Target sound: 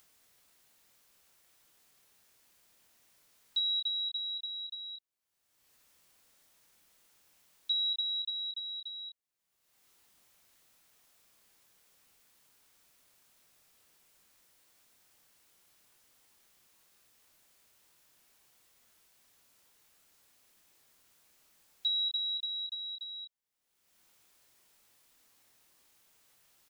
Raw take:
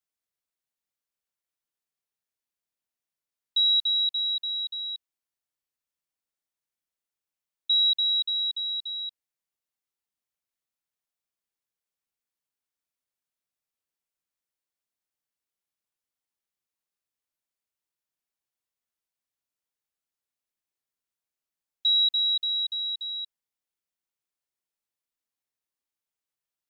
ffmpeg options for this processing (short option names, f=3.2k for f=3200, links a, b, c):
-filter_complex "[0:a]asplit=2[a][b];[b]adelay=26,volume=-8.5dB[c];[a][c]amix=inputs=2:normalize=0,acompressor=mode=upward:threshold=-37dB:ratio=2.5,volume=-6.5dB"